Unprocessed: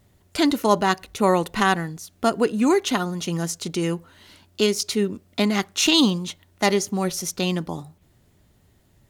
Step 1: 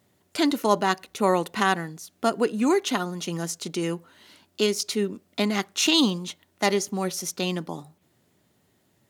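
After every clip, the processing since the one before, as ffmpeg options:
ffmpeg -i in.wav -af "highpass=170,volume=-2.5dB" out.wav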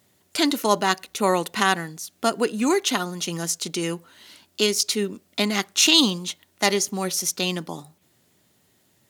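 ffmpeg -i in.wav -af "highshelf=frequency=2100:gain=7.5" out.wav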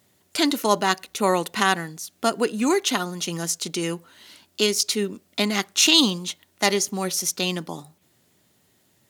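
ffmpeg -i in.wav -af anull out.wav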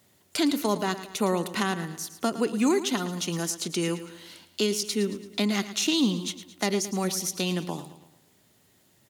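ffmpeg -i in.wav -filter_complex "[0:a]acrossover=split=370[link_01][link_02];[link_02]acompressor=threshold=-29dB:ratio=3[link_03];[link_01][link_03]amix=inputs=2:normalize=0,aecho=1:1:111|222|333|444|555:0.224|0.105|0.0495|0.0232|0.0109" out.wav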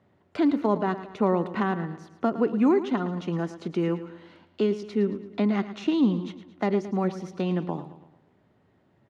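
ffmpeg -i in.wav -af "lowpass=1400,volume=2.5dB" out.wav

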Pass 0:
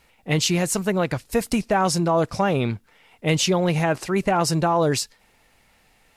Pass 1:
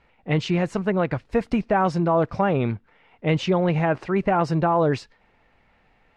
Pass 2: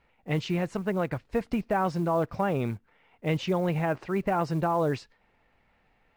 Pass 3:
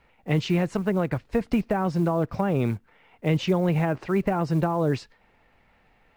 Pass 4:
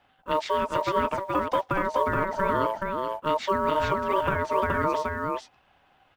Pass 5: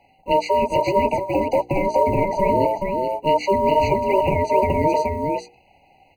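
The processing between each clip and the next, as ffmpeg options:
ffmpeg -i in.wav -af "lowpass=2200" out.wav
ffmpeg -i in.wav -af "acrusher=bits=8:mode=log:mix=0:aa=0.000001,volume=-6dB" out.wav
ffmpeg -i in.wav -filter_complex "[0:a]acrossover=split=380[link_01][link_02];[link_02]acompressor=threshold=-33dB:ratio=3[link_03];[link_01][link_03]amix=inputs=2:normalize=0,volume=5.5dB" out.wav
ffmpeg -i in.wav -af "aeval=exprs='val(0)*sin(2*PI*770*n/s)':channel_layout=same,aecho=1:1:424:0.708" out.wav
ffmpeg -i in.wav -af "bandreject=frequency=60:width_type=h:width=6,bandreject=frequency=120:width_type=h:width=6,bandreject=frequency=180:width_type=h:width=6,bandreject=frequency=240:width_type=h:width=6,bandreject=frequency=300:width_type=h:width=6,bandreject=frequency=360:width_type=h:width=6,bandreject=frequency=420:width_type=h:width=6,bandreject=frequency=480:width_type=h:width=6,afftfilt=real='re*eq(mod(floor(b*sr/1024/980),2),0)':imag='im*eq(mod(floor(b*sr/1024/980),2),0)':win_size=1024:overlap=0.75,volume=8.5dB" out.wav

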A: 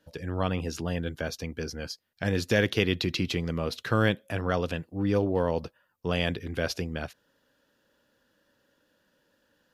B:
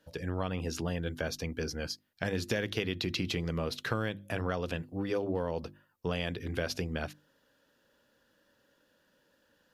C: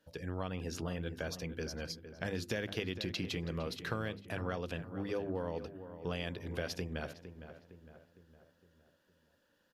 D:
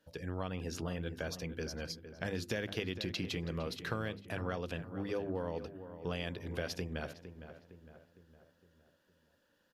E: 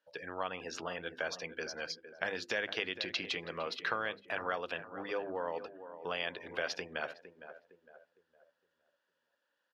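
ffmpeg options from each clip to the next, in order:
ffmpeg -i in.wav -af "bandreject=frequency=50:width_type=h:width=6,bandreject=frequency=100:width_type=h:width=6,bandreject=frequency=150:width_type=h:width=6,bandreject=frequency=200:width_type=h:width=6,bandreject=frequency=250:width_type=h:width=6,bandreject=frequency=300:width_type=h:width=6,bandreject=frequency=350:width_type=h:width=6,acompressor=threshold=-28dB:ratio=6" out.wav
ffmpeg -i in.wav -filter_complex "[0:a]asplit=2[link_01][link_02];[link_02]adelay=459,lowpass=frequency=2000:poles=1,volume=-11dB,asplit=2[link_03][link_04];[link_04]adelay=459,lowpass=frequency=2000:poles=1,volume=0.51,asplit=2[link_05][link_06];[link_06]adelay=459,lowpass=frequency=2000:poles=1,volume=0.51,asplit=2[link_07][link_08];[link_08]adelay=459,lowpass=frequency=2000:poles=1,volume=0.51,asplit=2[link_09][link_10];[link_10]adelay=459,lowpass=frequency=2000:poles=1,volume=0.51[link_11];[link_01][link_03][link_05][link_07][link_09][link_11]amix=inputs=6:normalize=0,volume=-5dB" out.wav
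ffmpeg -i in.wav -af anull out.wav
ffmpeg -i in.wav -af "highpass=800,aemphasis=mode=reproduction:type=bsi,afftdn=noise_reduction=12:noise_floor=-61,volume=8dB" out.wav

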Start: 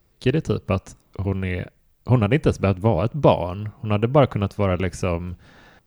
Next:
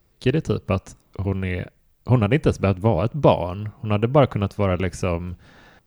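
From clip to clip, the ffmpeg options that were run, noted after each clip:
ffmpeg -i in.wav -af anull out.wav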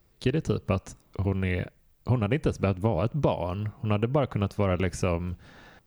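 ffmpeg -i in.wav -af "acompressor=threshold=-19dB:ratio=6,volume=-1.5dB" out.wav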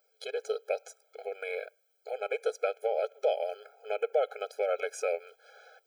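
ffmpeg -i in.wav -af "afftfilt=real='re*eq(mod(floor(b*sr/1024/430),2),1)':imag='im*eq(mod(floor(b*sr/1024/430),2),1)':win_size=1024:overlap=0.75" out.wav

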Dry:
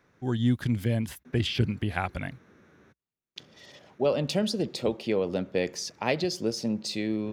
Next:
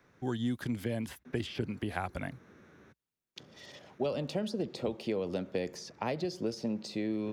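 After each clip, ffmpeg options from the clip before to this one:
ffmpeg -i in.wav -filter_complex "[0:a]acrossover=split=230|1600|4700[link_01][link_02][link_03][link_04];[link_01]acompressor=threshold=-41dB:ratio=4[link_05];[link_02]acompressor=threshold=-32dB:ratio=4[link_06];[link_03]acompressor=threshold=-50dB:ratio=4[link_07];[link_04]acompressor=threshold=-53dB:ratio=4[link_08];[link_05][link_06][link_07][link_08]amix=inputs=4:normalize=0" out.wav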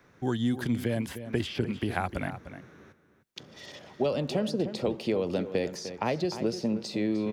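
ffmpeg -i in.wav -filter_complex "[0:a]asplit=2[link_01][link_02];[link_02]adelay=303.2,volume=-11dB,highshelf=frequency=4000:gain=-6.82[link_03];[link_01][link_03]amix=inputs=2:normalize=0,volume=5dB" out.wav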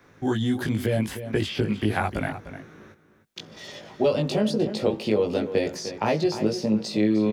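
ffmpeg -i in.wav -filter_complex "[0:a]asplit=2[link_01][link_02];[link_02]adelay=19,volume=-2dB[link_03];[link_01][link_03]amix=inputs=2:normalize=0,volume=3dB" out.wav

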